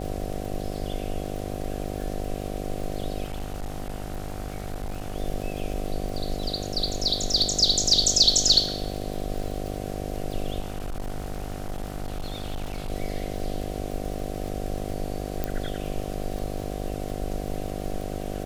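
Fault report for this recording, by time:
buzz 50 Hz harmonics 15 -33 dBFS
crackle 54 per s -33 dBFS
3.24–5.14 s: clipped -27.5 dBFS
10.59–12.91 s: clipped -27 dBFS
15.44 s: pop -13 dBFS

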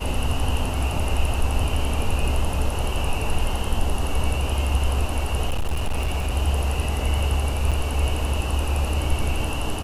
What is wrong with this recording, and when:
5.47–6.35 s: clipped -19 dBFS
7.71–7.72 s: dropout 6.7 ms

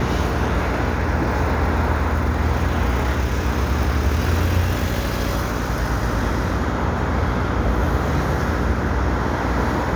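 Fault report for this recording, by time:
buzz 60 Hz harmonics 10 -25 dBFS

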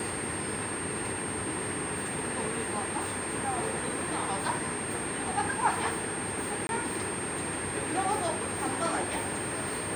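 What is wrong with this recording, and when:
whine 8.6 kHz -36 dBFS
6.67–6.69 s: dropout 21 ms

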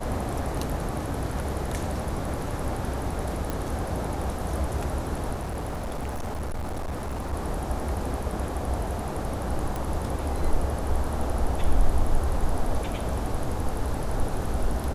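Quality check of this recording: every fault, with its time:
3.50 s: pop
5.34–7.34 s: clipped -27.5 dBFS
9.76 s: pop

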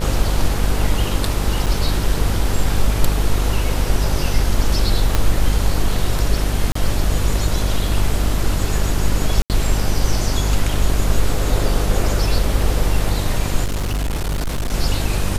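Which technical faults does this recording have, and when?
buzz 50 Hz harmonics 30 -21 dBFS
1.66–1.67 s: dropout 6.4 ms
5.15 s: pop -3 dBFS
6.72–6.75 s: dropout 34 ms
9.42–9.50 s: dropout 78 ms
13.64–14.74 s: clipped -17.5 dBFS

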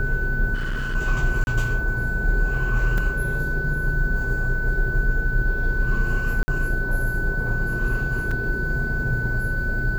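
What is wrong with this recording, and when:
whine 1.5 kHz -26 dBFS
0.54–0.96 s: clipped -22.5 dBFS
1.44–1.47 s: dropout 31 ms
2.98 s: dropout 2.9 ms
6.43–6.48 s: dropout 50 ms
8.31 s: dropout 4.1 ms

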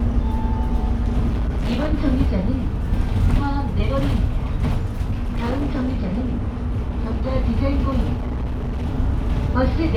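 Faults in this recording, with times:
1.28–1.94 s: clipped -17.5 dBFS
5.10–7.34 s: clipped -18 dBFS
8.13–8.86 s: clipped -21 dBFS

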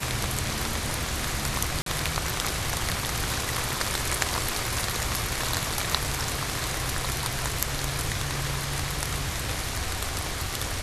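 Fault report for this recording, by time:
1.82–1.86 s: dropout 43 ms

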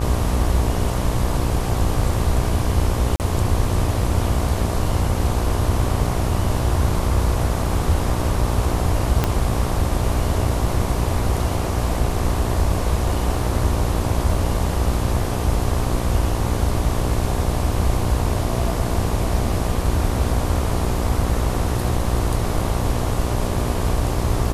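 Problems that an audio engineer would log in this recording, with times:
buzz 60 Hz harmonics 20 -25 dBFS
3.16–3.20 s: dropout 38 ms
9.24 s: pop -4 dBFS

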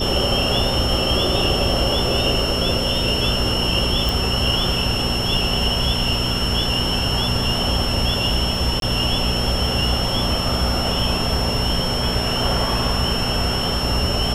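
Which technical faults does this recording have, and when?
crackle 12 per s -29 dBFS
hum 60 Hz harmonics 4 -26 dBFS
whine 5.4 kHz -25 dBFS
4.09 s: pop
8.80–8.82 s: dropout 22 ms

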